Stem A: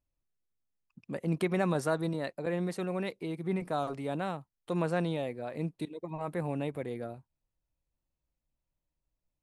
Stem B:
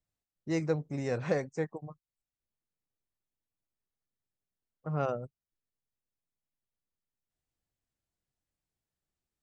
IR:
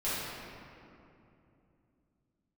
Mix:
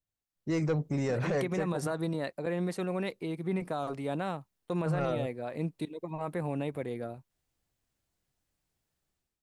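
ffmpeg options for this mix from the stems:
-filter_complex "[0:a]agate=range=-24dB:threshold=-48dB:ratio=16:detection=peak,volume=1dB[link_01];[1:a]dynaudnorm=framelen=170:gausssize=5:maxgain=12.5dB,asoftclip=type=tanh:threshold=-12dB,volume=-4.5dB[link_02];[link_01][link_02]amix=inputs=2:normalize=0,alimiter=limit=-22.5dB:level=0:latency=1:release=59"

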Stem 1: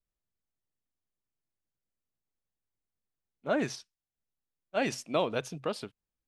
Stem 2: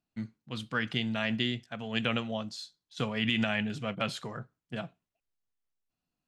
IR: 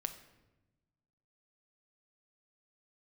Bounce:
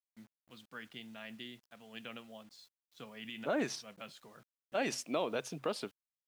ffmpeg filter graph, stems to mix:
-filter_complex "[0:a]alimiter=limit=-23.5dB:level=0:latency=1:release=195,volume=1.5dB,asplit=2[link_01][link_02];[1:a]volume=-16dB[link_03];[link_02]apad=whole_len=276519[link_04];[link_03][link_04]sidechaincompress=threshold=-49dB:ratio=8:attack=16:release=142[link_05];[link_01][link_05]amix=inputs=2:normalize=0,highpass=200,acrusher=bits=10:mix=0:aa=0.000001"

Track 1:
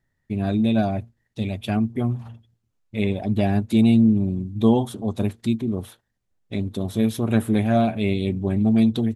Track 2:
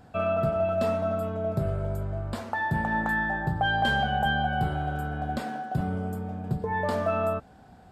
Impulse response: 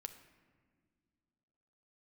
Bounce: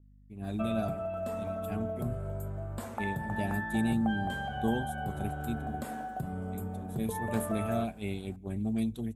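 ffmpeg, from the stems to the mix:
-filter_complex "[0:a]aeval=exprs='val(0)+0.0178*(sin(2*PI*50*n/s)+sin(2*PI*2*50*n/s)/2+sin(2*PI*3*50*n/s)/3+sin(2*PI*4*50*n/s)/4+sin(2*PI*5*50*n/s)/5)':channel_layout=same,agate=range=-8dB:threshold=-22dB:ratio=16:detection=peak,adynamicequalizer=threshold=0.00794:dfrequency=2100:dqfactor=0.7:tfrequency=2100:tqfactor=0.7:attack=5:release=100:ratio=0.375:range=3:mode=boostabove:tftype=highshelf,volume=-14dB,asplit=2[link_01][link_02];[link_02]volume=-16.5dB[link_03];[1:a]acompressor=threshold=-29dB:ratio=6,adelay=450,volume=-3.5dB[link_04];[2:a]atrim=start_sample=2205[link_05];[link_03][link_05]afir=irnorm=-1:irlink=0[link_06];[link_01][link_04][link_06]amix=inputs=3:normalize=0,aexciter=amount=6.2:drive=4.5:freq=6700,highshelf=frequency=3700:gain=-8"

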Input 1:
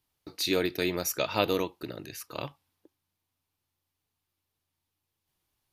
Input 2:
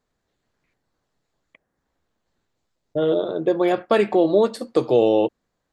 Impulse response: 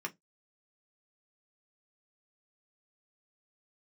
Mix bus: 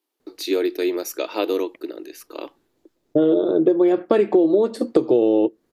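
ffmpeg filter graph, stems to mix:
-filter_complex "[0:a]highpass=frequency=320:width=0.5412,highpass=frequency=320:width=1.3066,volume=-1dB[link_01];[1:a]adelay=200,volume=2dB,asplit=2[link_02][link_03];[link_03]volume=-19dB[link_04];[2:a]atrim=start_sample=2205[link_05];[link_04][link_05]afir=irnorm=-1:irlink=0[link_06];[link_01][link_02][link_06]amix=inputs=3:normalize=0,equalizer=frequency=330:width=1.2:gain=13.5,acompressor=threshold=-14dB:ratio=6"

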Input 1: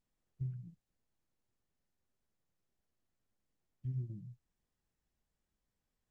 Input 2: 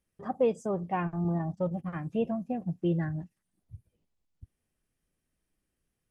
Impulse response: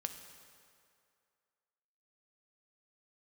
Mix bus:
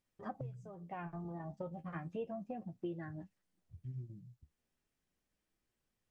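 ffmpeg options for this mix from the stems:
-filter_complex "[0:a]volume=-1.5dB,asplit=2[link_01][link_02];[1:a]lowpass=7100,acompressor=threshold=-33dB:ratio=6,flanger=delay=8.3:depth=6.1:regen=44:speed=0.35:shape=triangular,volume=0.5dB[link_03];[link_02]apad=whole_len=269247[link_04];[link_03][link_04]sidechaincompress=threshold=-53dB:ratio=8:attack=8.4:release=493[link_05];[link_01][link_05]amix=inputs=2:normalize=0,lowshelf=frequency=240:gain=-5.5"

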